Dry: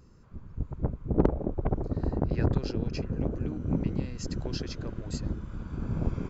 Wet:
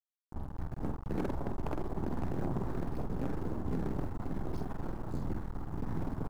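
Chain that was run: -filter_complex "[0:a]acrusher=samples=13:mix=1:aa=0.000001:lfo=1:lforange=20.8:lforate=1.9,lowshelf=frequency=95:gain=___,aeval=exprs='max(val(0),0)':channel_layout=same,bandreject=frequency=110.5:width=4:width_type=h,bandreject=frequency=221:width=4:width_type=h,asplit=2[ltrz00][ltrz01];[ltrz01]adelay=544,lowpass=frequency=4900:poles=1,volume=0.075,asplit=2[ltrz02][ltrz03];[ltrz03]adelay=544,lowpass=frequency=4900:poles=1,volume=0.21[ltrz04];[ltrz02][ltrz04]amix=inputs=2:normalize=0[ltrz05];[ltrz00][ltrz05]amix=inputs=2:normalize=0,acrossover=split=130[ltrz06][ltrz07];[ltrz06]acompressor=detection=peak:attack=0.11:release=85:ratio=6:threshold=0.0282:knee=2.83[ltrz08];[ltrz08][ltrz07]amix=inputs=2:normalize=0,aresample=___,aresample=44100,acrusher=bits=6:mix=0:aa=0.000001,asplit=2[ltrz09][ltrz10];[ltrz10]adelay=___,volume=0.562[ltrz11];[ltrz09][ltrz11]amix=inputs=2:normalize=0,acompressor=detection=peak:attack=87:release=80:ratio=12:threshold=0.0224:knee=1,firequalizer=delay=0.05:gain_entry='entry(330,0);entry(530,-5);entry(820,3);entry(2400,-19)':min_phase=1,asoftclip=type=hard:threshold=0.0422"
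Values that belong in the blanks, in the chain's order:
2, 32000, 47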